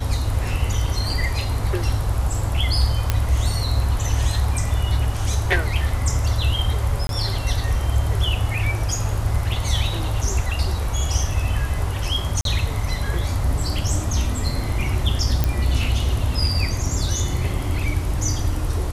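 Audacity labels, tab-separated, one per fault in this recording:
3.100000	3.100000	pop -4 dBFS
7.070000	7.090000	gap 22 ms
12.410000	12.450000	gap 42 ms
15.440000	15.440000	pop -6 dBFS

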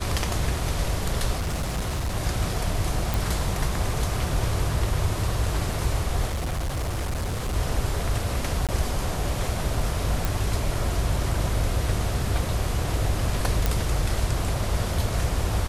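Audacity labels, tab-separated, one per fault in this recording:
1.380000	2.170000	clipped -23 dBFS
3.140000	3.140000	pop
6.270000	7.560000	clipped -24 dBFS
8.670000	8.690000	gap 17 ms
10.250000	10.250000	pop
13.660000	13.660000	pop

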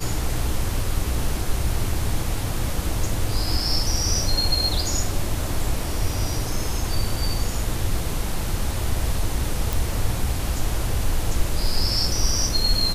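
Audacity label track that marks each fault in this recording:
9.730000	9.730000	pop

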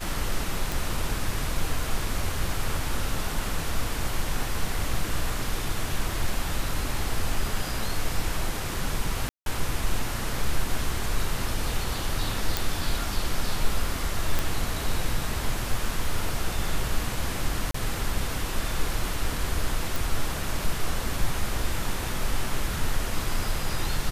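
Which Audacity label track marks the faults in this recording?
0.720000	0.720000	pop
9.290000	9.460000	gap 0.172 s
12.570000	12.570000	pop
14.390000	14.390000	pop
17.710000	17.740000	gap 34 ms
19.960000	19.960000	pop

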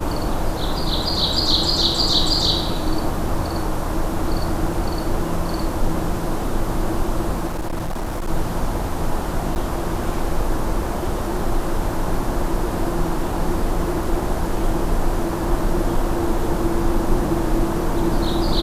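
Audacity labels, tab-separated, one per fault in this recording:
7.460000	8.290000	clipped -21 dBFS
9.550000	9.560000	gap 9.4 ms

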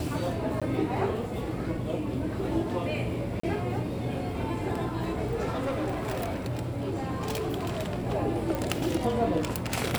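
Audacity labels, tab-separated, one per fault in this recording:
0.600000	0.620000	gap 16 ms
3.400000	3.430000	gap 34 ms
5.490000	8.070000	clipped -26.5 dBFS
8.550000	8.550000	pop

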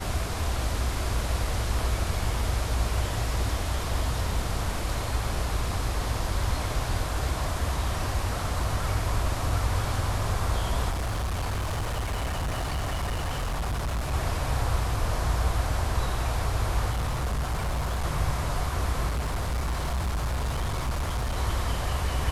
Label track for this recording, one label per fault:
10.900000	14.140000	clipped -25.5 dBFS
16.900000	18.050000	clipped -24 dBFS
19.070000	21.370000	clipped -24.5 dBFS

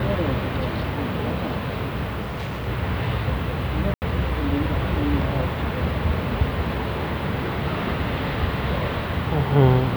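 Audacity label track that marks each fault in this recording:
2.210000	2.680000	clipped -25 dBFS
3.940000	4.020000	gap 79 ms

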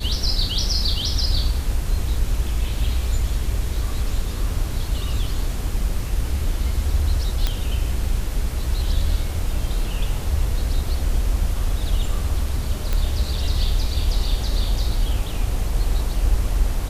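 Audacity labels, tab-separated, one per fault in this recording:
7.470000	7.470000	pop -7 dBFS
12.930000	12.930000	pop -9 dBFS

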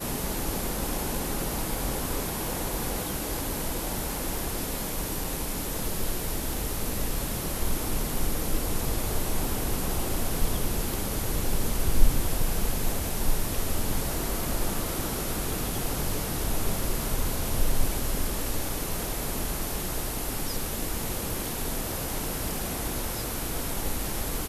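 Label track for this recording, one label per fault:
5.240000	5.240000	gap 3.3 ms

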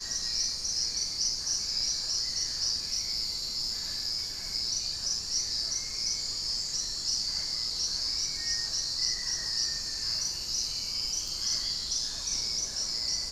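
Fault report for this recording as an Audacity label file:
11.280000	11.280000	gap 2.2 ms

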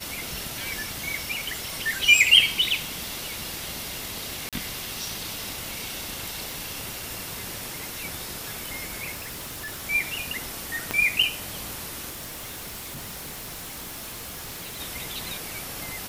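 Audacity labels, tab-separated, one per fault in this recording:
4.490000	4.530000	gap 37 ms
6.510000	6.510000	pop
9.140000	9.840000	clipped -32 dBFS
10.910000	10.910000	pop -10 dBFS
12.090000	14.810000	clipped -33.5 dBFS

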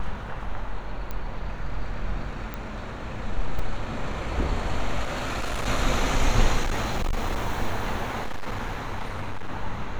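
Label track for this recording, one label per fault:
1.110000	1.110000	pop -18 dBFS
2.540000	2.540000	pop -18 dBFS
3.590000	3.590000	gap 3.7 ms
5.030000	5.680000	clipped -24.5 dBFS
6.630000	7.420000	clipped -21.5 dBFS
8.180000	9.500000	clipped -25 dBFS

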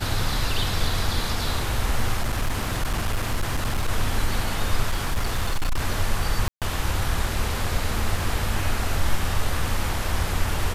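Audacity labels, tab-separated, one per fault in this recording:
2.210000	3.890000	clipped -19 dBFS
4.900000	5.810000	clipped -18.5 dBFS
6.480000	6.620000	gap 0.137 s

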